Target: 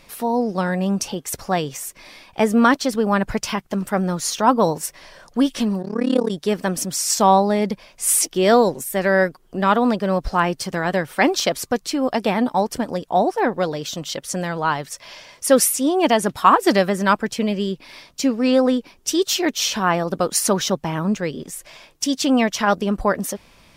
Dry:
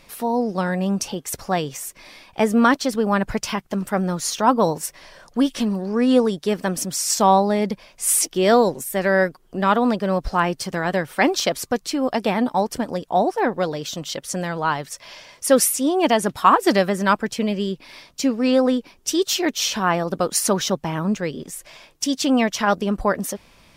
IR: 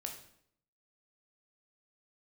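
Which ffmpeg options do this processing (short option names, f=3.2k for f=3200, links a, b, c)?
-filter_complex "[0:a]asettb=1/sr,asplit=3[a][b][c];[a]atrim=end=5.824[d];[b]atrim=start=5.82:end=6.31,asetpts=PTS-STARTPTS,afade=t=in:d=0.004:c=qsin,afade=t=out:st=0.486:d=0.004:c=qsin,tremolo=f=35:d=0.974[e];[c]atrim=start=6.306[f];[d][e]acrossfade=d=0.004:c1=hsin:c2=qsin[g];[g][f]acrossfade=d=0.004:c1=qsin:c2=hsin,volume=1dB"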